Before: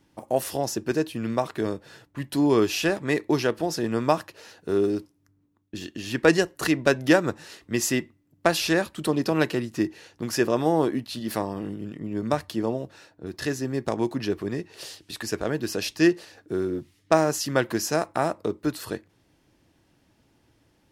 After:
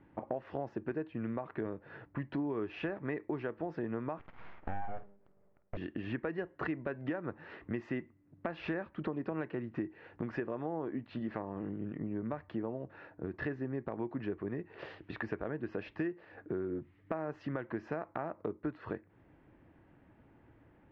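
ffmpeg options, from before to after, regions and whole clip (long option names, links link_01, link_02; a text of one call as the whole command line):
ffmpeg -i in.wav -filter_complex "[0:a]asettb=1/sr,asplit=3[link_01][link_02][link_03];[link_01]atrim=end=4.194[link_04];[link_02]atrim=start=4.19:end=5.77,asetpts=PTS-STARTPTS,afade=type=in:duration=0.004:curve=qsin,afade=type=out:start_time=1.576:duration=0.004:curve=qsin,bandreject=frequency=50:width_type=h:width=6,bandreject=frequency=100:width_type=h:width=6,bandreject=frequency=150:width_type=h:width=6,bandreject=frequency=200:width_type=h:width=6,bandreject=frequency=250:width_type=h:width=6,bandreject=frequency=300:width_type=h:width=6,bandreject=frequency=350:width_type=h:width=6,aeval=exprs='abs(val(0))':channel_layout=same,asplit=2[link_05][link_06];[link_06]adelay=50,volume=-13.5dB[link_07];[link_05][link_07]amix=inputs=2:normalize=0,atrim=end_sample=69678[link_08];[link_03]atrim=start=5.766[link_09];[link_04][link_08]acrossfade=duration=0.004:curve1=hsin:curve2=qsin[link_10];[link_10][link_09]acrossfade=duration=0.004:curve1=qsin:curve2=hsin,lowpass=frequency=2100:width=0.5412,lowpass=frequency=2100:width=1.3066,alimiter=limit=-14dB:level=0:latency=1:release=262,acompressor=threshold=-38dB:ratio=4,volume=2dB" out.wav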